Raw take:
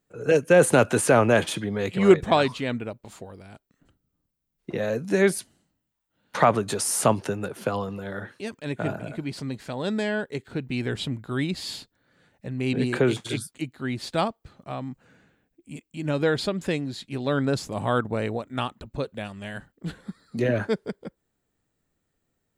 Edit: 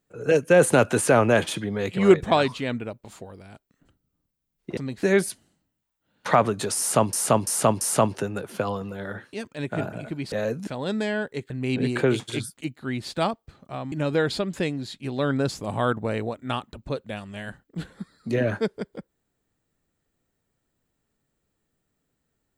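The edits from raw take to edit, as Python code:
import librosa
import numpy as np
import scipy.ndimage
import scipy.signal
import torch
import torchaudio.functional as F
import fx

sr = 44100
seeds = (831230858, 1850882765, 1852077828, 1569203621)

y = fx.edit(x, sr, fx.swap(start_s=4.77, length_s=0.35, other_s=9.39, other_length_s=0.26),
    fx.repeat(start_s=6.88, length_s=0.34, count=4),
    fx.cut(start_s=10.48, length_s=1.99),
    fx.cut(start_s=14.89, length_s=1.11), tone=tone)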